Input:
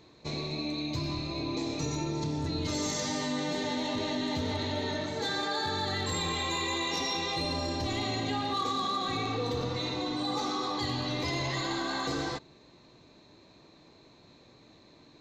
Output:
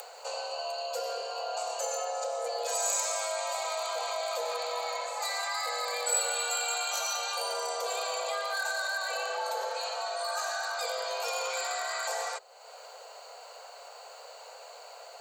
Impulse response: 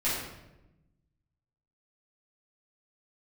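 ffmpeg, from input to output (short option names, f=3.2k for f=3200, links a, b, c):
-af "acompressor=mode=upward:threshold=-35dB:ratio=2.5,aexciter=amount=7.1:drive=4.7:freq=6.9k,afreqshift=390,volume=-1.5dB"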